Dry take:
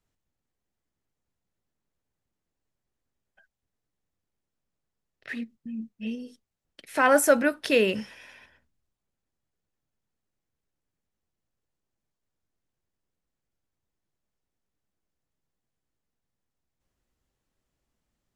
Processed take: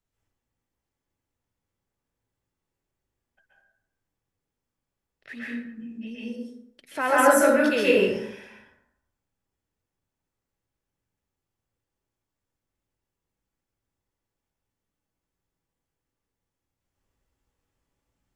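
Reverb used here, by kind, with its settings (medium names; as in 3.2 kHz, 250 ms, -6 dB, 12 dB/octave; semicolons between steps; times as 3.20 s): plate-style reverb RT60 0.8 s, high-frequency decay 0.5×, pre-delay 115 ms, DRR -7.5 dB; trim -5.5 dB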